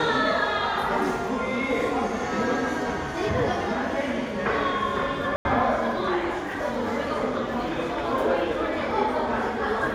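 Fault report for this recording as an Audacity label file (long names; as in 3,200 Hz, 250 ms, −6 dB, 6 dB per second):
5.360000	5.450000	drop-out 91 ms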